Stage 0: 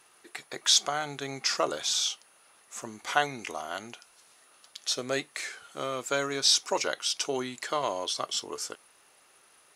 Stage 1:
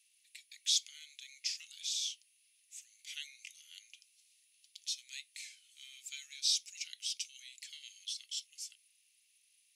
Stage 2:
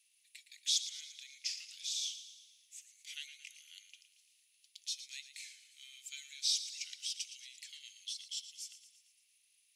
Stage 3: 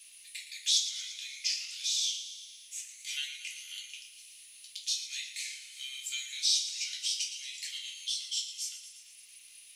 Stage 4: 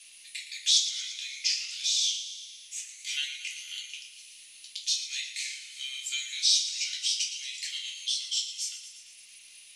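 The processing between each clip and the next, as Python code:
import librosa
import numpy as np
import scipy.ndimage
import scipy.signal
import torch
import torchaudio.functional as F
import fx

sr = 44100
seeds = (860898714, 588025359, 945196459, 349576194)

y1 = scipy.signal.sosfilt(scipy.signal.butter(8, 2300.0, 'highpass', fs=sr, output='sos'), x)
y1 = y1 * librosa.db_to_amplitude(-8.5)
y2 = fx.echo_feedback(y1, sr, ms=114, feedback_pct=56, wet_db=-12.0)
y2 = y2 * librosa.db_to_amplitude(-1.5)
y3 = fx.room_shoebox(y2, sr, seeds[0], volume_m3=290.0, walls='furnished', distance_m=3.2)
y3 = fx.band_squash(y3, sr, depth_pct=40)
y3 = y3 * librosa.db_to_amplitude(4.0)
y4 = scipy.signal.sosfilt(scipy.signal.butter(2, 8800.0, 'lowpass', fs=sr, output='sos'), y3)
y4 = y4 * librosa.db_to_amplitude(4.5)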